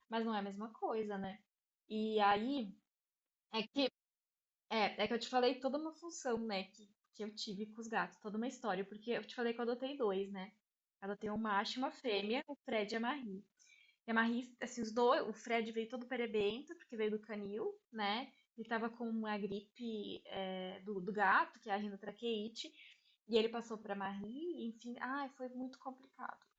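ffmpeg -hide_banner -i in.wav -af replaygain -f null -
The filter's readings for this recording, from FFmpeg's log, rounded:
track_gain = +19.1 dB
track_peak = 0.071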